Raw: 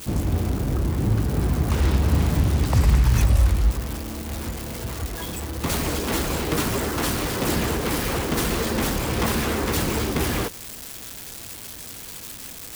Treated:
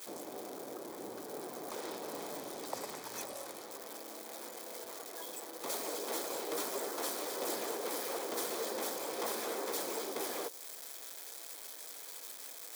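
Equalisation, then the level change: notch 2800 Hz, Q 7.8; dynamic EQ 1800 Hz, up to -7 dB, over -43 dBFS, Q 0.72; ladder high-pass 370 Hz, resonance 25%; -3.5 dB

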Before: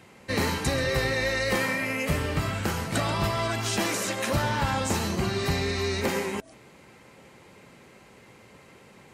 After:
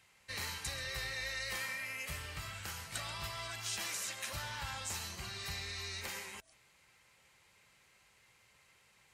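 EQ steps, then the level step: passive tone stack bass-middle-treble 10-0-10; bell 310 Hz +10 dB 0.53 oct; -7.0 dB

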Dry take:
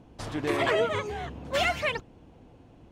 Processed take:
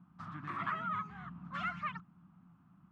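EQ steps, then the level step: dynamic EQ 580 Hz, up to -4 dB, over -37 dBFS, Q 1.1; double band-pass 470 Hz, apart 2.8 oct; +3.0 dB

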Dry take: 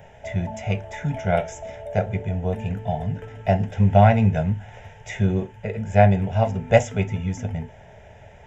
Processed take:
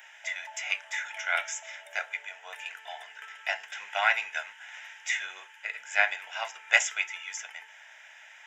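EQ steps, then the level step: HPF 1300 Hz 24 dB/oct; +6.0 dB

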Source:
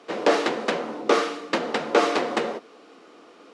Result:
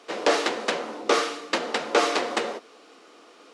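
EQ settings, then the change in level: HPF 320 Hz 6 dB/oct; high shelf 3900 Hz +7.5 dB; -1.0 dB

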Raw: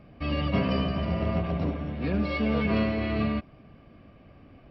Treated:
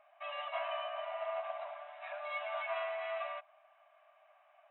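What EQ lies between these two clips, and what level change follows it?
brick-wall FIR band-pass 580–4000 Hz; high shelf 2500 Hz -11.5 dB; -2.0 dB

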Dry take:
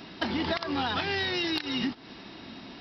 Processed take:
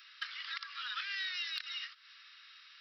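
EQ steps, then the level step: steep high-pass 1200 Hz 72 dB/oct; -7.0 dB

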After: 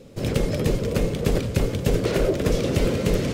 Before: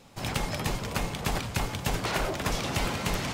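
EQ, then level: resonant low shelf 640 Hz +8.5 dB, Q 3; 0.0 dB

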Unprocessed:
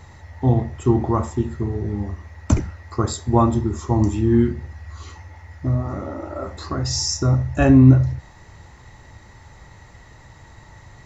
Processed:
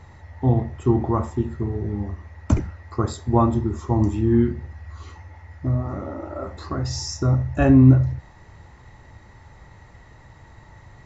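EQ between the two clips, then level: high shelf 4100 Hz -9.5 dB; -1.5 dB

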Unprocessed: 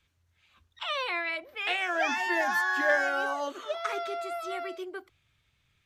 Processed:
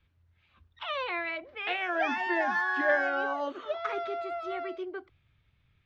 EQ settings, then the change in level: air absorption 230 m; low shelf 260 Hz +6 dB; 0.0 dB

